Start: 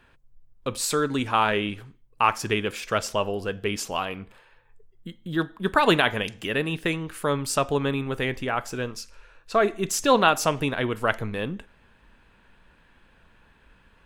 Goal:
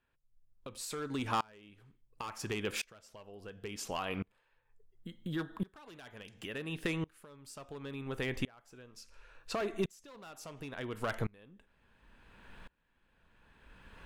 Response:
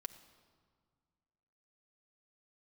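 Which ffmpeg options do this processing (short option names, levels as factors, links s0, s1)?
-filter_complex "[0:a]acrossover=split=6100[s0][s1];[s0]asoftclip=type=hard:threshold=0.119[s2];[s2][s1]amix=inputs=2:normalize=0,acompressor=threshold=0.0178:ratio=6,aeval=exprs='val(0)*pow(10,-29*if(lt(mod(-0.71*n/s,1),2*abs(-0.71)/1000),1-mod(-0.71*n/s,1)/(2*abs(-0.71)/1000),(mod(-0.71*n/s,1)-2*abs(-0.71)/1000)/(1-2*abs(-0.71)/1000))/20)':c=same,volume=2"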